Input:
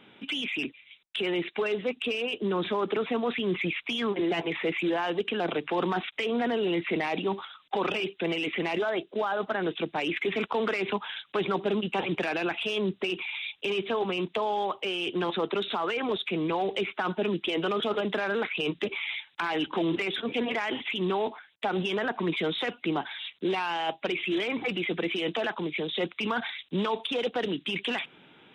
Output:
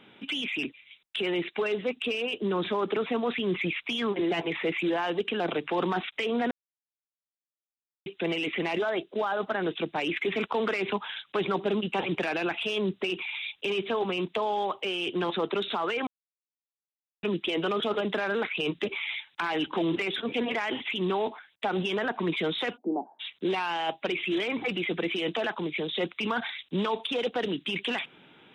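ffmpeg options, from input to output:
-filter_complex "[0:a]asplit=3[s0][s1][s2];[s0]afade=t=out:st=22.76:d=0.02[s3];[s1]asuperpass=centerf=410:order=12:qfactor=0.62,afade=t=in:st=22.76:d=0.02,afade=t=out:st=23.19:d=0.02[s4];[s2]afade=t=in:st=23.19:d=0.02[s5];[s3][s4][s5]amix=inputs=3:normalize=0,asplit=5[s6][s7][s8][s9][s10];[s6]atrim=end=6.51,asetpts=PTS-STARTPTS,afade=t=out:st=6.506:d=0.004:c=hsin[s11];[s7]atrim=start=6.51:end=8.06,asetpts=PTS-STARTPTS,volume=0[s12];[s8]atrim=start=8.06:end=16.07,asetpts=PTS-STARTPTS,afade=t=in:d=0.004:c=hsin,afade=t=out:st=8.006:d=0.004:c=hsin[s13];[s9]atrim=start=16.07:end=17.23,asetpts=PTS-STARTPTS,volume=0[s14];[s10]atrim=start=17.23,asetpts=PTS-STARTPTS,afade=t=in:d=0.004:c=hsin[s15];[s11][s12][s13][s14][s15]concat=n=5:v=0:a=1"

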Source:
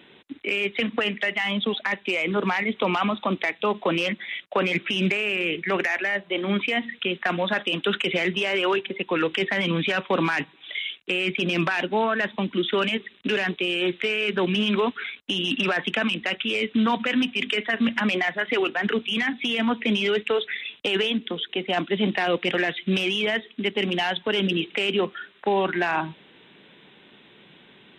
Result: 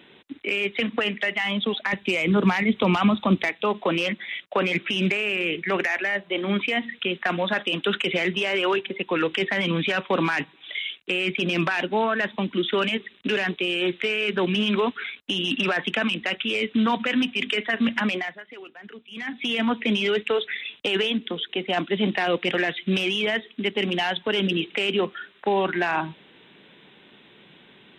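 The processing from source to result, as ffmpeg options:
-filter_complex "[0:a]asettb=1/sr,asplit=3[s0][s1][s2];[s0]atrim=end=1.934[s3];[s1]atrim=start=1.93:end=3.49,asetpts=PTS-STARTPTS,afade=t=in:d=0.004:c=qsin,afade=t=out:st=1.556:d=0.004:c=qsin,bass=f=250:g=11,treble=f=4000:g=5[s4];[s2]atrim=start=3.486[s5];[s3][s4]acrossfade=d=0.004:c1=hsin:c2=qsin[s6];[s6][s5]acrossfade=d=0.004:c1=qsin:c2=hsin,asplit=3[s7][s8][s9];[s7]atrim=end=18.43,asetpts=PTS-STARTPTS,afade=t=out:st=18.02:d=0.41:silence=0.11885[s10];[s8]atrim=start=18.43:end=19.1,asetpts=PTS-STARTPTS,volume=0.119[s11];[s9]atrim=start=19.1,asetpts=PTS-STARTPTS,afade=t=in:d=0.41:silence=0.11885[s12];[s10][s11][s12]concat=n=3:v=0:a=1"

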